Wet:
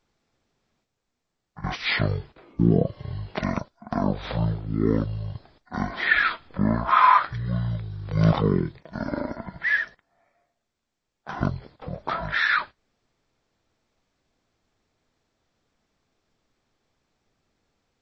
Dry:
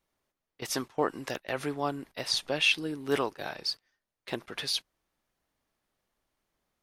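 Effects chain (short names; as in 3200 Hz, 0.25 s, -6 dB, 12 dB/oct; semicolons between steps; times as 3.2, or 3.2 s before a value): wide varispeed 0.379×; gain +7.5 dB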